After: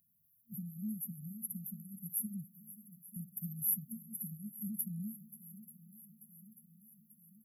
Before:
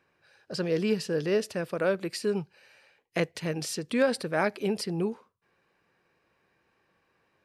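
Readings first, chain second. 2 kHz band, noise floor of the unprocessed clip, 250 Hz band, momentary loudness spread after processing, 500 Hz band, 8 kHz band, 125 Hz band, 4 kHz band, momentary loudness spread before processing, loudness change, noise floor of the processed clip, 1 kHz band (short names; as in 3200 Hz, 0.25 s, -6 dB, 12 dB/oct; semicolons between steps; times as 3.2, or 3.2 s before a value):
under -40 dB, -73 dBFS, -11.5 dB, 21 LU, under -40 dB, 0.0 dB, -9.0 dB, under -40 dB, 8 LU, -10.5 dB, -72 dBFS, under -40 dB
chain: bin magnitudes rounded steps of 15 dB; compressor, threshold -31 dBFS, peak gain reduction 11.5 dB; tone controls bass -15 dB, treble +15 dB; FFT band-reject 230–11000 Hz; on a send: swung echo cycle 0.888 s, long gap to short 1.5:1, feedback 58%, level -17 dB; on the sum: gain +7.5 dB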